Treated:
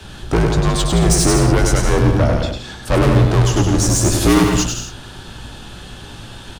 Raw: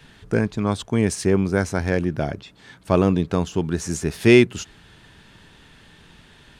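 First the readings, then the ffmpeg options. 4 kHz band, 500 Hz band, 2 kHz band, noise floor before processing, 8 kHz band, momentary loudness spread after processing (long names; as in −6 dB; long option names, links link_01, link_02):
+10.5 dB, +2.5 dB, +2.5 dB, −51 dBFS, +14.5 dB, 21 LU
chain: -filter_complex "[0:a]equalizer=frequency=2100:width=1.8:gain=-10,acontrast=80,asoftclip=type=tanh:threshold=-19.5dB,afreqshift=-58,asplit=2[link_01][link_02];[link_02]adelay=17,volume=-11.5dB[link_03];[link_01][link_03]amix=inputs=2:normalize=0,asplit=2[link_04][link_05];[link_05]aecho=0:1:100|170|219|253.3|277.3:0.631|0.398|0.251|0.158|0.1[link_06];[link_04][link_06]amix=inputs=2:normalize=0,volume=7.5dB"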